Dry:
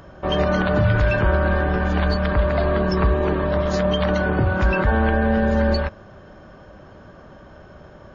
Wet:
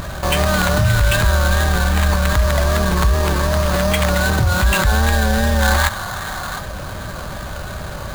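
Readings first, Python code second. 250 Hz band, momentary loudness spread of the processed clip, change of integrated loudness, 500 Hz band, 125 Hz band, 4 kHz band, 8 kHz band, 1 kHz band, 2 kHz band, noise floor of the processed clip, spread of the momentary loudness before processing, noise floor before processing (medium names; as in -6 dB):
-0.5 dB, 13 LU, +3.0 dB, -0.5 dB, +4.5 dB, +9.5 dB, no reading, +4.5 dB, +5.5 dB, -29 dBFS, 3 LU, -45 dBFS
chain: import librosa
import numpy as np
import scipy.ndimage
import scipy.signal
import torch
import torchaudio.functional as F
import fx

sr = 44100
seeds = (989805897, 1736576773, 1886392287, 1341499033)

y = fx.spec_box(x, sr, start_s=5.62, length_s=0.97, low_hz=670.0, high_hz=2300.0, gain_db=9)
y = fx.peak_eq(y, sr, hz=340.0, db=-13.0, octaves=2.1)
y = fx.vibrato(y, sr, rate_hz=2.6, depth_cents=61.0)
y = fx.sample_hold(y, sr, seeds[0], rate_hz=5500.0, jitter_pct=20)
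y = fx.env_flatten(y, sr, amount_pct=50)
y = y * librosa.db_to_amplitude(4.0)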